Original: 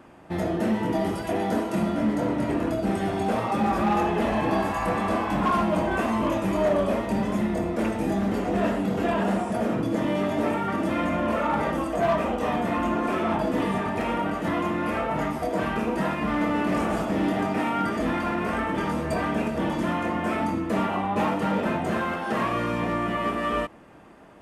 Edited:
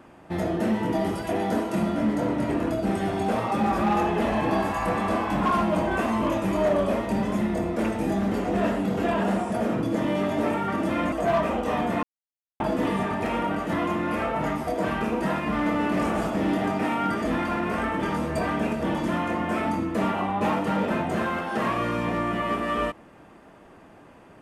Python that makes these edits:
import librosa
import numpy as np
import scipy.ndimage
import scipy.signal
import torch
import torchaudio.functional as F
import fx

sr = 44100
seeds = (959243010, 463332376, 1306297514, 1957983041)

y = fx.edit(x, sr, fx.cut(start_s=11.12, length_s=0.75),
    fx.silence(start_s=12.78, length_s=0.57), tone=tone)